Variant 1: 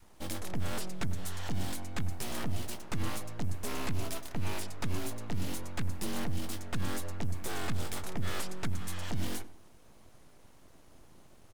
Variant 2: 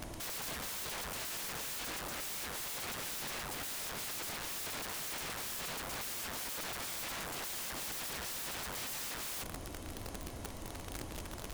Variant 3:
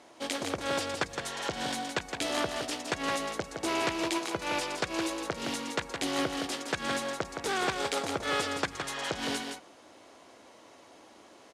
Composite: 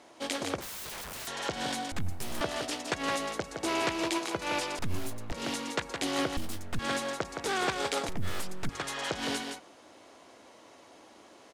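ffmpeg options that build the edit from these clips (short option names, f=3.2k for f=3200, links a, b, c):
-filter_complex "[0:a]asplit=4[a][b][c][d];[2:a]asplit=6[e][f][g][h][i][j];[e]atrim=end=0.612[k];[1:a]atrim=start=0.608:end=1.272[l];[f]atrim=start=1.268:end=1.922[m];[a]atrim=start=1.918:end=2.412[n];[g]atrim=start=2.408:end=4.792[o];[b]atrim=start=4.788:end=5.322[p];[h]atrim=start=5.318:end=6.372[q];[c]atrim=start=6.368:end=6.792[r];[i]atrim=start=6.788:end=8.092[s];[d]atrim=start=8.088:end=8.692[t];[j]atrim=start=8.688[u];[k][l]acrossfade=d=0.004:c1=hsin:c2=hsin[v];[v][m]acrossfade=d=0.004:c1=hsin:c2=hsin[w];[w][n]acrossfade=d=0.004:c1=hsin:c2=hsin[x];[x][o]acrossfade=d=0.004:c1=hsin:c2=hsin[y];[y][p]acrossfade=d=0.004:c1=hsin:c2=hsin[z];[z][q]acrossfade=d=0.004:c1=hsin:c2=hsin[aa];[aa][r]acrossfade=d=0.004:c1=hsin:c2=hsin[ab];[ab][s]acrossfade=d=0.004:c1=hsin:c2=hsin[ac];[ac][t]acrossfade=d=0.004:c1=hsin:c2=hsin[ad];[ad][u]acrossfade=d=0.004:c1=hsin:c2=hsin"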